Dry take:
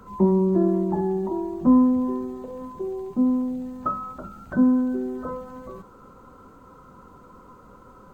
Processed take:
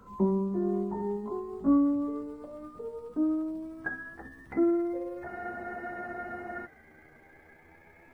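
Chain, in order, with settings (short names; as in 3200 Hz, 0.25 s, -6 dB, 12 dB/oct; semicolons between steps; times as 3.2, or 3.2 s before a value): gliding pitch shift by +9 st starting unshifted; spectral freeze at 5.29, 1.36 s; gain -7 dB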